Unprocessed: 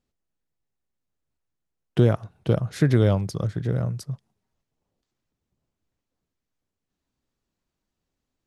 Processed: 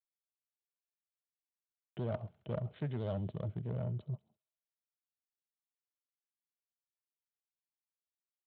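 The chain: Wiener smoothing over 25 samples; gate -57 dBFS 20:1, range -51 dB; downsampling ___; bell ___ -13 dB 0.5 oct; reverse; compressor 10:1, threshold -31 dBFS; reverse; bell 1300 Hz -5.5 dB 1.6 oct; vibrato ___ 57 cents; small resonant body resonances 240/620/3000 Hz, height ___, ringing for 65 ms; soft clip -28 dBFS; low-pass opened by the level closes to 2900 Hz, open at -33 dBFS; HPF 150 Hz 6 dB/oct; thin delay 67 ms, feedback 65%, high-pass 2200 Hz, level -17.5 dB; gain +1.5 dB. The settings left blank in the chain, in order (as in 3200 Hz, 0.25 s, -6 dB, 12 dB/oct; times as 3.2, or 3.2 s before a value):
8000 Hz, 260 Hz, 14 Hz, 10 dB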